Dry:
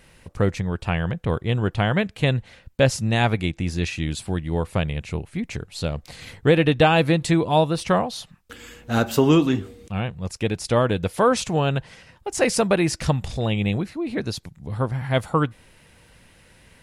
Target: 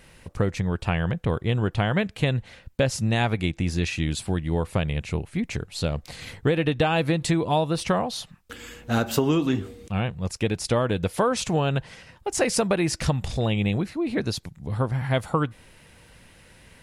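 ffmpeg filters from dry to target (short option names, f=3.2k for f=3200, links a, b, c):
-af "acompressor=threshold=-19dB:ratio=6,volume=1dB"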